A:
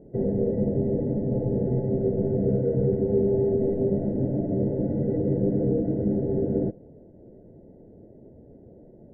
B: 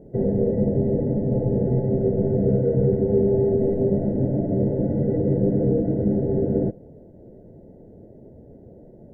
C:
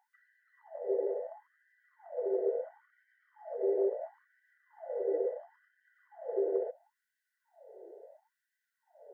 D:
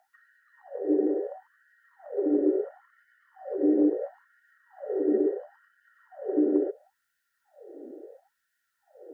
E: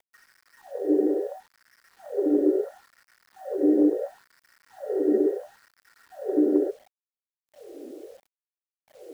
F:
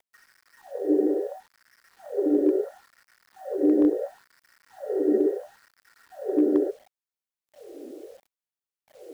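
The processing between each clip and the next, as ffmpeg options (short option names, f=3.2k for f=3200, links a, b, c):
-af "equalizer=f=310:w=1.5:g=-2.5,volume=4.5dB"
-af "acompressor=threshold=-23dB:ratio=6,afftfilt=real='re*gte(b*sr/1024,340*pow(1500/340,0.5+0.5*sin(2*PI*0.73*pts/sr)))':imag='im*gte(b*sr/1024,340*pow(1500/340,0.5+0.5*sin(2*PI*0.73*pts/sr)))':win_size=1024:overlap=0.75"
-af "afreqshift=-93,volume=7.5dB"
-af "acrusher=bits=9:mix=0:aa=0.000001,volume=2.5dB"
-af "asoftclip=type=hard:threshold=-12dB"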